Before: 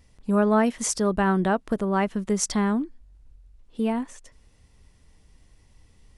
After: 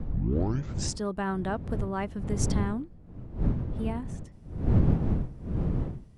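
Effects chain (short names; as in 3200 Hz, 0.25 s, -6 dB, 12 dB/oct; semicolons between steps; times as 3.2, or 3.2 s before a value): tape start at the beginning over 1.02 s; wind noise 150 Hz -21 dBFS; gain -8.5 dB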